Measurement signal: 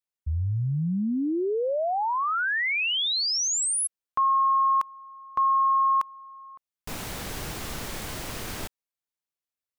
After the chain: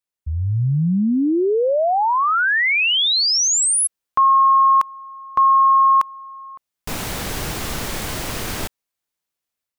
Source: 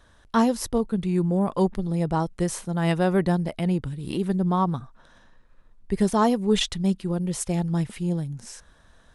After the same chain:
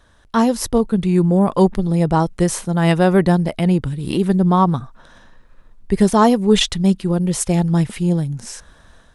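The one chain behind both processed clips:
automatic gain control gain up to 6 dB
level +2.5 dB

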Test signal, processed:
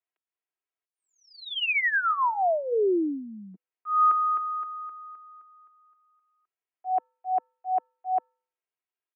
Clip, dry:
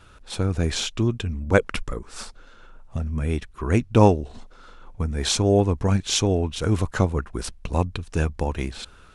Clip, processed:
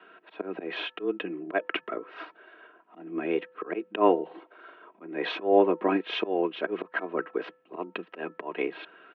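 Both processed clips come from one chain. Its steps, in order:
volume swells 181 ms
comb filter 3.3 ms, depth 62%
hum removal 409.1 Hz, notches 4
single-sideband voice off tune +93 Hz 160–2,800 Hz

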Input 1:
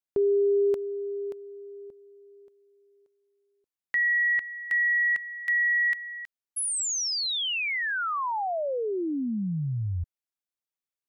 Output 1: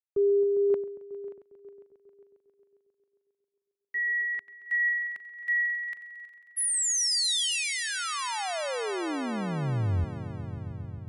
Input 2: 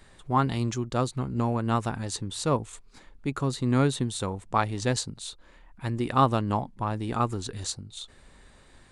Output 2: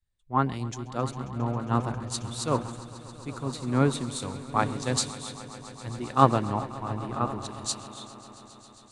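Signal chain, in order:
on a send: echo that builds up and dies away 135 ms, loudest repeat 5, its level −13 dB
on the sum: multiband upward and downward expander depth 100%
level −4 dB

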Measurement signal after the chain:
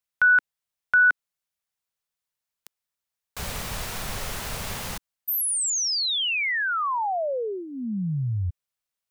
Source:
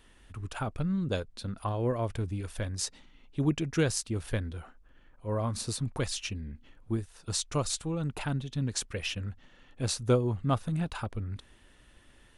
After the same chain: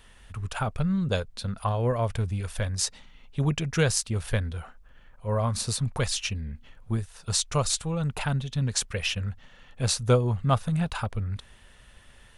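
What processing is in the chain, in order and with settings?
parametric band 310 Hz −13 dB 0.53 octaves
level +6 dB

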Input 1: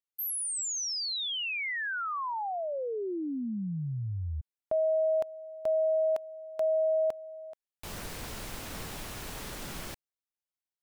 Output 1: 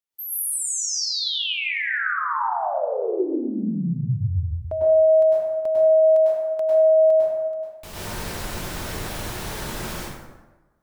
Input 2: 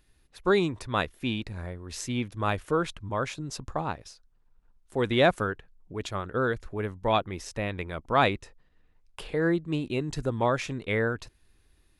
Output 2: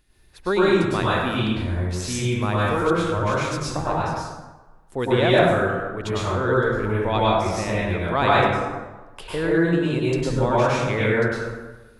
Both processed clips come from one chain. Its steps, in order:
dense smooth reverb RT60 1.2 s, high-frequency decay 0.55×, pre-delay 90 ms, DRR −8 dB
in parallel at −1 dB: downward compressor, threshold −22 dBFS
on the sum: level −4.5 dB

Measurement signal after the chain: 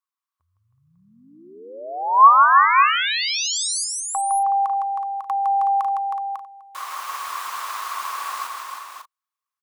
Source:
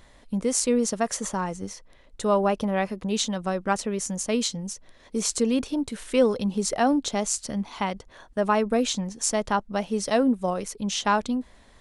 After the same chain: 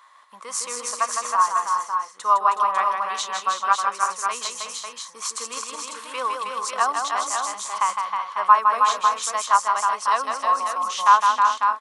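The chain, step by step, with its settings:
high-pass with resonance 1,100 Hz, resonance Q 11
on a send: multi-tap delay 159/316/371/548/585 ms −5/−5/−11/−6/−16 dB
on the sum: level −2.5 dB

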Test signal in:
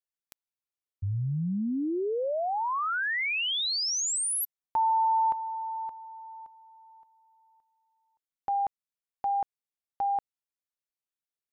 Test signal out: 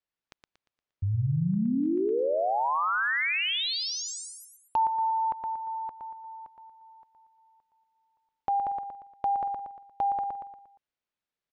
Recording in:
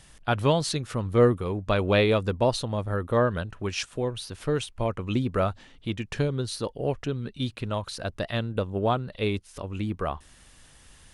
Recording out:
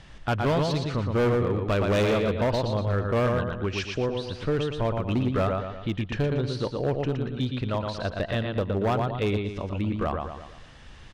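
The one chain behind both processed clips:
high-frequency loss of the air 170 metres
repeating echo 117 ms, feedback 39%, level −5 dB
in parallel at +1 dB: downward compressor 8 to 1, threshold −39 dBFS
on the sum: hard clipping −19.5 dBFS

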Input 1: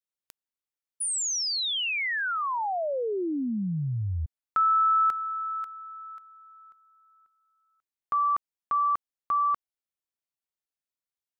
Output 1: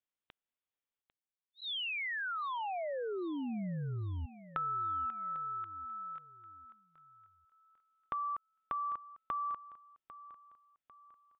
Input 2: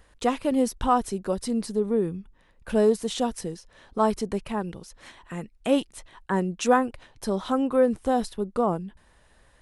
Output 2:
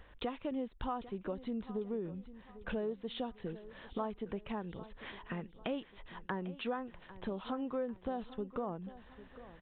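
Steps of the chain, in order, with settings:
downward compressor 4 to 1, threshold −38 dBFS
on a send: repeating echo 798 ms, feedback 40%, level −16 dB
on the sum: downsampling to 8,000 Hz

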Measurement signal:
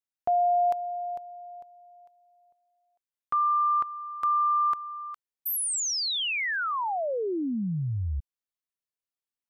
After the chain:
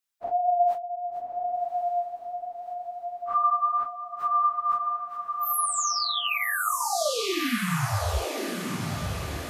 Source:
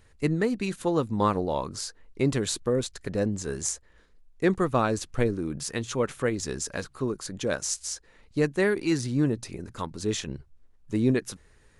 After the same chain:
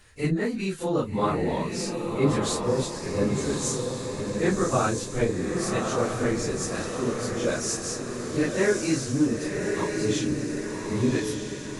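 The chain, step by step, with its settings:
random phases in long frames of 100 ms
feedback delay with all-pass diffusion 1,145 ms, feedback 50%, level −3.5 dB
one half of a high-frequency compander encoder only

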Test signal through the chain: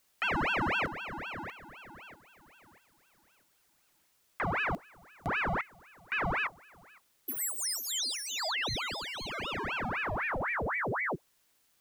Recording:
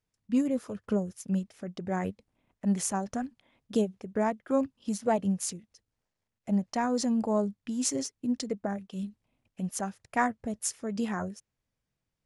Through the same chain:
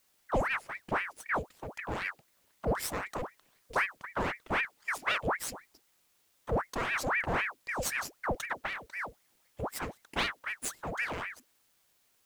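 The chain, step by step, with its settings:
lower of the sound and its delayed copy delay 0.41 ms
background noise white −68 dBFS
ring modulator whose carrier an LFO sweeps 1,200 Hz, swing 80%, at 3.9 Hz

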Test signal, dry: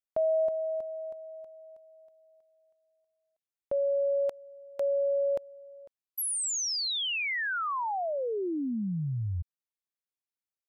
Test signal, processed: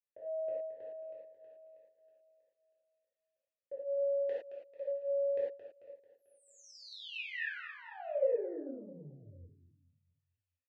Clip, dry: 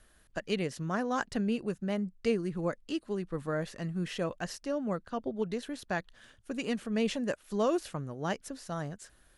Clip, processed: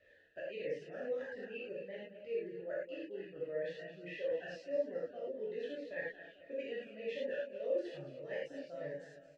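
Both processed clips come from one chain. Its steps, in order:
reverb reduction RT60 2 s
parametric band 87 Hz +8.5 dB 0.33 octaves
reversed playback
downward compressor 12 to 1, threshold −41 dBFS
reversed playback
formant filter e
high-frequency loss of the air 120 metres
on a send: repeating echo 221 ms, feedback 47%, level −11.5 dB
on the sum: reverb whose tail is shaped and stops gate 130 ms flat, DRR −7 dB
phaser whose notches keep moving one way falling 1.7 Hz
level +9.5 dB

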